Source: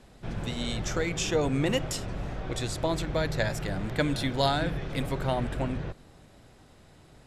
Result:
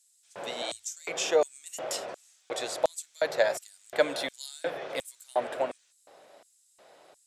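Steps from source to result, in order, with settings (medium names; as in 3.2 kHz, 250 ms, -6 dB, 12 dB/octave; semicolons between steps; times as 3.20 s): LFO high-pass square 1.4 Hz 570–7800 Hz; 0.62–1.09 s: frequency shift +86 Hz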